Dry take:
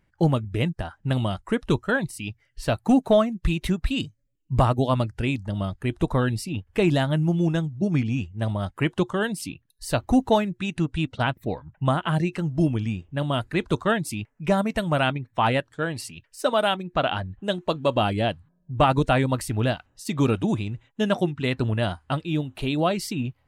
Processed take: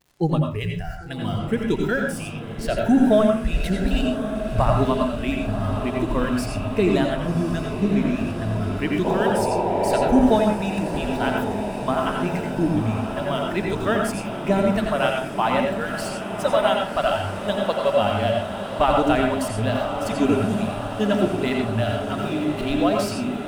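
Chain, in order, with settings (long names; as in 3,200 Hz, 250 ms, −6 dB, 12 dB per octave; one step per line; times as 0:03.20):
converter with a step at zero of −36 dBFS
low-shelf EQ 190 Hz −3.5 dB
noise gate −36 dBFS, range −18 dB
noise reduction from a noise print of the clip's start 16 dB
sound drawn into the spectrogram noise, 0:09.04–0:10.22, 340–1,000 Hz −25 dBFS
feedback delay with all-pass diffusion 1,081 ms, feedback 75%, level −9 dB
surface crackle 140 per second −43 dBFS
tilt shelving filter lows +3 dB, about 750 Hz
on a send at −2 dB: Butterworth low-pass 11,000 Hz 96 dB per octave + convolution reverb RT60 0.40 s, pre-delay 82 ms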